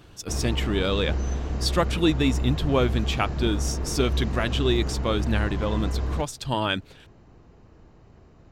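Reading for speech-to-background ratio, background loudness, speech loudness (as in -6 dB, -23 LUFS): 3.0 dB, -29.5 LUFS, -26.5 LUFS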